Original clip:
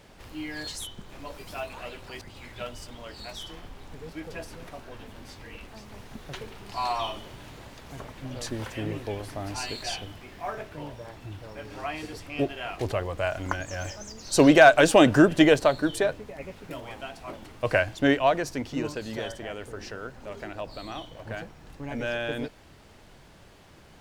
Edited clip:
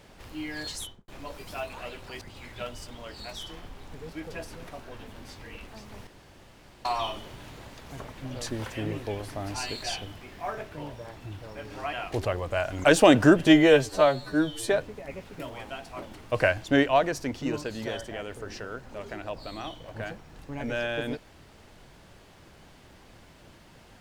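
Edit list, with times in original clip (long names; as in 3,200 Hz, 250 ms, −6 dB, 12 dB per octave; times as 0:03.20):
0:00.81–0:01.08: fade out and dull
0:06.07–0:06.85: fill with room tone
0:11.93–0:12.60: remove
0:13.51–0:14.76: remove
0:15.39–0:16.00: time-stretch 2×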